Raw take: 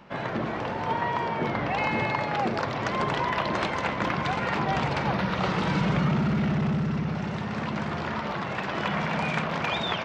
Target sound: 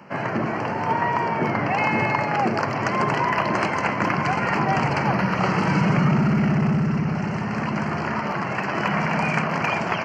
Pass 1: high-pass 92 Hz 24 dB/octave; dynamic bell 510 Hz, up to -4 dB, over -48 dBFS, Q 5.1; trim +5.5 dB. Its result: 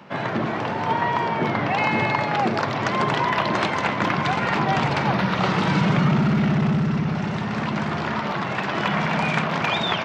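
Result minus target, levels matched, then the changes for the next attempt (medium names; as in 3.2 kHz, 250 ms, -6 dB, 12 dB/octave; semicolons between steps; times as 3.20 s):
4 kHz band +6.5 dB
add after dynamic bell: Butterworth band-stop 3.6 kHz, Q 2.4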